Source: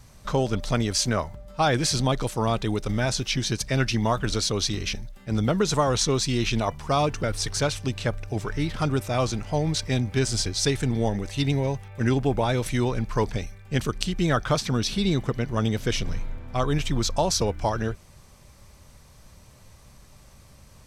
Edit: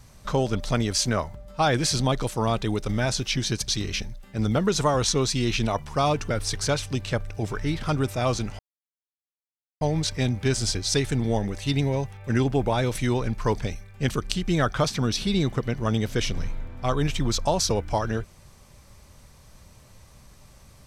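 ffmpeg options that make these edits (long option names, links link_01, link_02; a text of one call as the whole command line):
ffmpeg -i in.wav -filter_complex "[0:a]asplit=3[link_01][link_02][link_03];[link_01]atrim=end=3.682[link_04];[link_02]atrim=start=4.608:end=9.52,asetpts=PTS-STARTPTS,afade=type=out:start_time=4.908:duration=0.004:curve=hsin,apad=pad_dur=1.22[link_05];[link_03]atrim=start=9.52,asetpts=PTS-STARTPTS,afade=type=in:duration=0.004:curve=hsin[link_06];[link_05][link_06]concat=n=2:v=0:a=1[link_07];[link_04][link_07]acrossfade=duration=0.004:curve1=hsin:curve2=hsin" out.wav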